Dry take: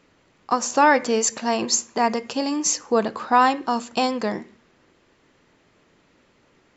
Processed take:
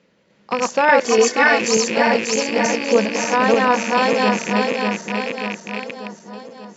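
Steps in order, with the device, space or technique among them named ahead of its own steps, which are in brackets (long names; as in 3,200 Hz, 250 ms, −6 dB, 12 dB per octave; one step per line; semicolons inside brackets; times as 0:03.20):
feedback delay that plays each chunk backwards 295 ms, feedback 74%, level 0 dB
0:02.66–0:03.93: high-frequency loss of the air 66 metres
car door speaker with a rattle (loose part that buzzes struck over −37 dBFS, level −15 dBFS; loudspeaker in its box 91–6,600 Hz, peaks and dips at 100 Hz −7 dB, 200 Hz +10 dB, 290 Hz −6 dB, 520 Hz +7 dB, 750 Hz −4 dB, 1,200 Hz −6 dB)
0:01.05–0:01.61: comb filter 2.7 ms, depth 87%
dynamic equaliser 1,800 Hz, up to +5 dB, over −35 dBFS, Q 1.4
level −1 dB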